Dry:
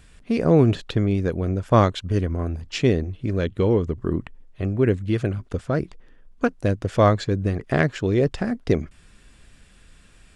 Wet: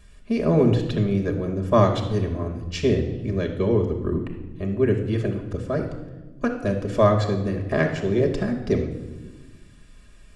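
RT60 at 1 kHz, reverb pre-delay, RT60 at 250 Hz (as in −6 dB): 1.0 s, 5 ms, 2.0 s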